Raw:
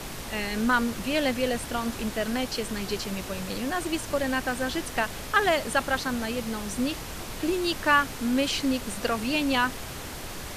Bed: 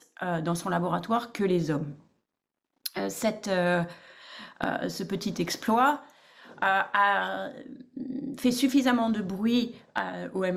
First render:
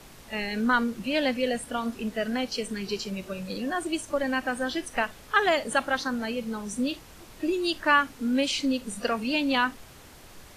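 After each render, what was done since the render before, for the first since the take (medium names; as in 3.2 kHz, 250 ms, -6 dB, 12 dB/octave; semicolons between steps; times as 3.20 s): noise print and reduce 12 dB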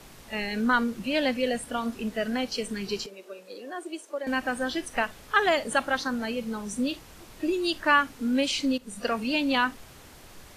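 3.06–4.27 s: ladder high-pass 330 Hz, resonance 45%; 8.78–9.21 s: fade in equal-power, from -12 dB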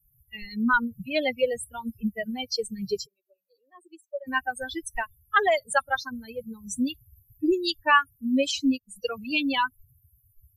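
expander on every frequency bin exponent 3; in parallel at +1.5 dB: gain riding within 4 dB 0.5 s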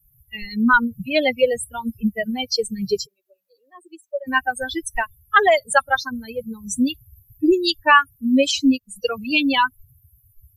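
trim +7 dB; peak limiter -1 dBFS, peak gain reduction 1.5 dB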